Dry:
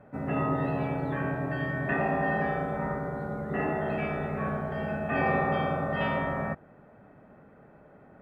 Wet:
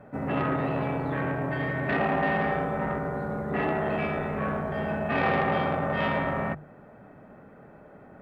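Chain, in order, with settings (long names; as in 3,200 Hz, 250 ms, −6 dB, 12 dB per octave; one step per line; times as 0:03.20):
mains-hum notches 50/100/150 Hz
saturating transformer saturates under 980 Hz
level +4.5 dB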